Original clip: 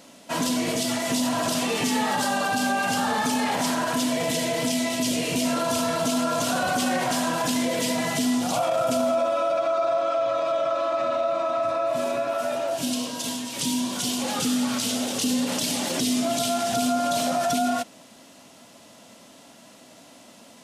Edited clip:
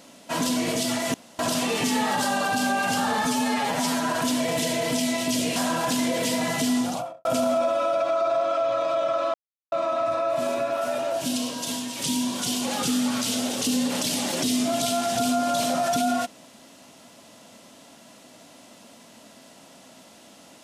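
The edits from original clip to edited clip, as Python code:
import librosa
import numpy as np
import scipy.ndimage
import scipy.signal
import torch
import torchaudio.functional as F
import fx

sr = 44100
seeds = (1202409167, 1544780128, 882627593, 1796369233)

y = fx.studio_fade_out(x, sr, start_s=8.35, length_s=0.47)
y = fx.edit(y, sr, fx.room_tone_fill(start_s=1.14, length_s=0.25),
    fx.stretch_span(start_s=3.25, length_s=0.56, factor=1.5),
    fx.cut(start_s=5.28, length_s=1.85),
    fx.silence(start_s=10.91, length_s=0.38), tone=tone)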